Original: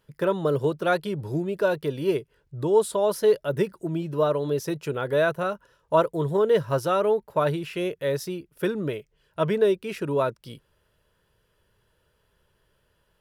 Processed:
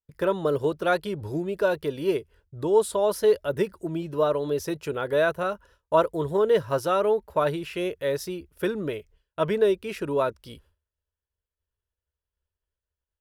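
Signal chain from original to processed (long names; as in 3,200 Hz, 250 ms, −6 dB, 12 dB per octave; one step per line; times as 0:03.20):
downward expander −51 dBFS
low shelf with overshoot 100 Hz +7.5 dB, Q 3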